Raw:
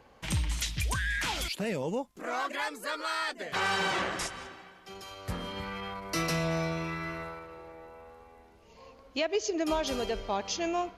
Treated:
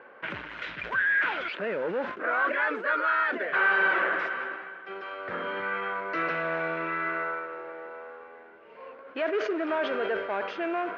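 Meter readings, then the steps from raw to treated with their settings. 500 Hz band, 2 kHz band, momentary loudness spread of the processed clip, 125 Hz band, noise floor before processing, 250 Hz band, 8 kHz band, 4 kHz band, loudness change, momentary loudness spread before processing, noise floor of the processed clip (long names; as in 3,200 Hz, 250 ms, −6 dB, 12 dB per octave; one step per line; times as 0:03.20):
+3.5 dB, +9.0 dB, 16 LU, −13.5 dB, −58 dBFS, −1.0 dB, below −25 dB, −7.0 dB, +4.0 dB, 16 LU, −50 dBFS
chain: in parallel at −2 dB: brickwall limiter −29 dBFS, peak gain reduction 10.5 dB
on the sum: noise that follows the level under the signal 12 dB
soft clipping −25 dBFS, distortion −14 dB
loudspeaker in its box 380–2,400 Hz, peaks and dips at 380 Hz +3 dB, 560 Hz +3 dB, 800 Hz −5 dB, 1,500 Hz +10 dB
level that may fall only so fast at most 70 dB per second
level +2.5 dB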